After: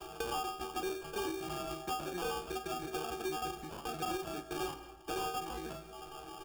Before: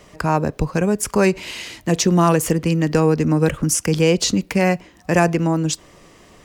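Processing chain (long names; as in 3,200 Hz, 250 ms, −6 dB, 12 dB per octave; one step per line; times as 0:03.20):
pitch shifter gated in a rhythm +7 semitones, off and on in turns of 82 ms
noise gate with hold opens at −42 dBFS
spectral tilt +2 dB per octave
in parallel at +0.5 dB: downward compressor, threshold −27 dBFS, peak gain reduction 16 dB
on the sum: stiff-string resonator 380 Hz, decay 0.39 s, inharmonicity 0.002
hard clipping −32 dBFS, distortion −10 dB
downsampling to 11,025 Hz
decimation without filtering 22×
hum removal 56.03 Hz, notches 40
convolution reverb RT60 0.40 s, pre-delay 115 ms, DRR 18 dB
multiband upward and downward compressor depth 70%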